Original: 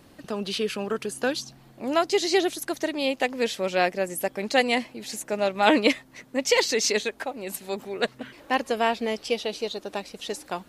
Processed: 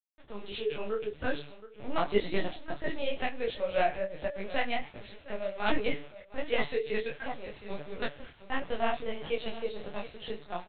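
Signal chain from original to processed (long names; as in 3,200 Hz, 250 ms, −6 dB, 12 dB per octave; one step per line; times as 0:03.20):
low-shelf EQ 71 Hz −4.5 dB
comb filter 6.9 ms, depth 50%
hum removal 146 Hz, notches 26
automatic gain control gain up to 6.5 dB
bit-depth reduction 6 bits, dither none
on a send: single-tap delay 715 ms −16.5 dB
on the sum: linear-prediction vocoder at 8 kHz pitch kept
micro pitch shift up and down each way 48 cents
level −8.5 dB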